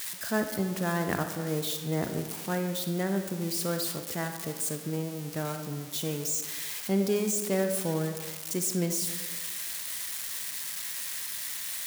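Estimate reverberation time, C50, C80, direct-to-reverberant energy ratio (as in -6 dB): 1.5 s, 6.5 dB, 8.5 dB, 6.0 dB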